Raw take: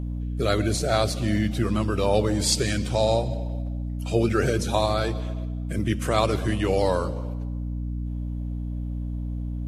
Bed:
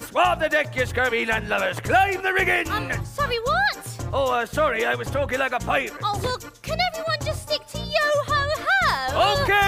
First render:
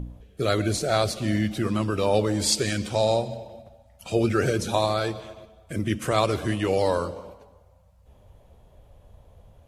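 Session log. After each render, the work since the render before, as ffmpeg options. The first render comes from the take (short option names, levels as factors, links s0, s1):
-af "bandreject=f=60:t=h:w=4,bandreject=f=120:t=h:w=4,bandreject=f=180:t=h:w=4,bandreject=f=240:t=h:w=4,bandreject=f=300:t=h:w=4"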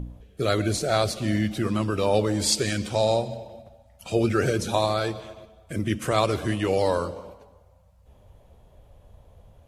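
-af anull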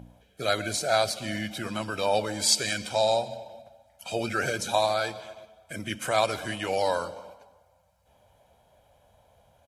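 -af "highpass=f=570:p=1,aecho=1:1:1.3:0.49"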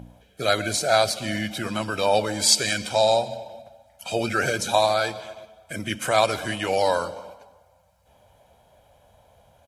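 -af "volume=1.68"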